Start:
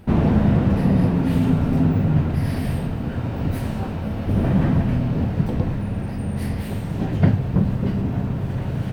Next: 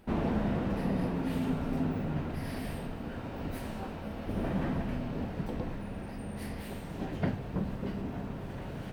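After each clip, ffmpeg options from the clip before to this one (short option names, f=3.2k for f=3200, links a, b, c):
-af "equalizer=f=110:t=o:w=1.6:g=-11.5,volume=-8dB"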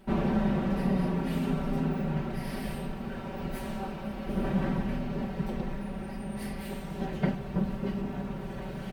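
-af "aecho=1:1:5.2:0.9"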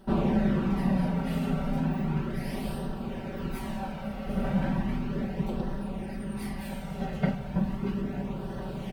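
-af "flanger=delay=0.2:depth=1.3:regen=-43:speed=0.35:shape=sinusoidal,volume=4.5dB"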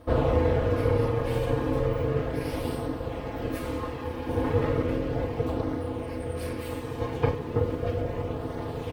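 -af "aeval=exprs='val(0)*sin(2*PI*290*n/s)':c=same,volume=5dB"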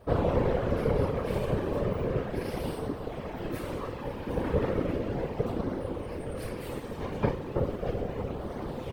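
-af "afftfilt=real='hypot(re,im)*cos(2*PI*random(0))':imag='hypot(re,im)*sin(2*PI*random(1))':win_size=512:overlap=0.75,volume=3dB"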